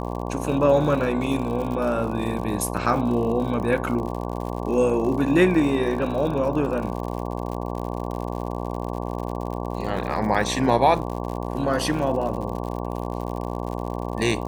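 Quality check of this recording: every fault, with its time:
buzz 60 Hz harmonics 19 -29 dBFS
crackle 87 per s -31 dBFS

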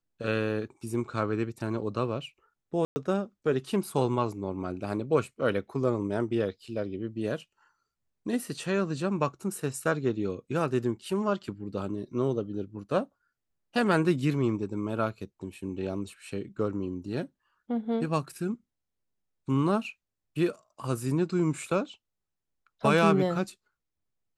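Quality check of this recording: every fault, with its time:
2.85–2.96 s: dropout 110 ms

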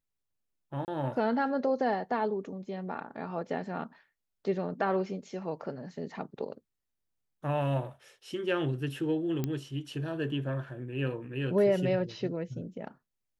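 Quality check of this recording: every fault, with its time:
0.85–0.88 s: dropout 29 ms
9.44 s: pop -18 dBFS

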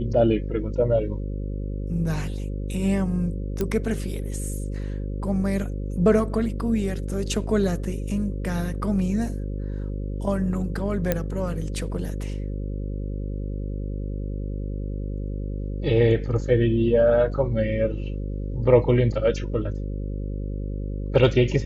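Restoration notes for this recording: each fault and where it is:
buzz 50 Hz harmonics 11 -29 dBFS
3.61 s: pop -12 dBFS
11.12 s: pop -8 dBFS

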